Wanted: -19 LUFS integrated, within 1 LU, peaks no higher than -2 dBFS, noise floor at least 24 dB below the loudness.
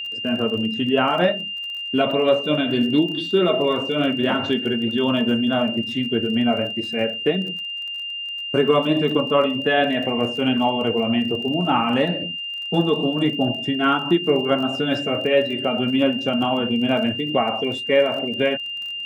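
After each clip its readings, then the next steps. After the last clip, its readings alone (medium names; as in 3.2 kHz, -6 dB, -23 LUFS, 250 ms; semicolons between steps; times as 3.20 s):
tick rate 31 per s; steady tone 2.8 kHz; tone level -27 dBFS; loudness -21.0 LUFS; peak level -5.5 dBFS; loudness target -19.0 LUFS
-> de-click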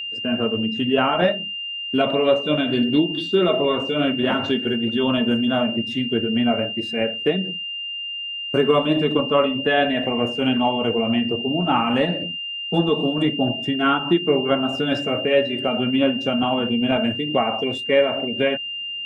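tick rate 0 per s; steady tone 2.8 kHz; tone level -27 dBFS
-> band-stop 2.8 kHz, Q 30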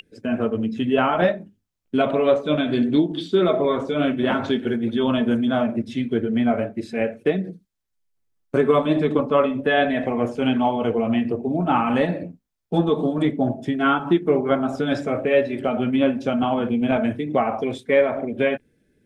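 steady tone not found; loudness -21.5 LUFS; peak level -5.5 dBFS; loudness target -19.0 LUFS
-> trim +2.5 dB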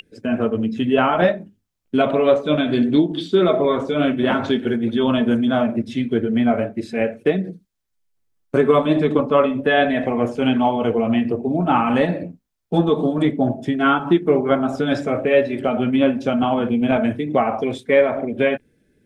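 loudness -19.0 LUFS; peak level -3.0 dBFS; noise floor -68 dBFS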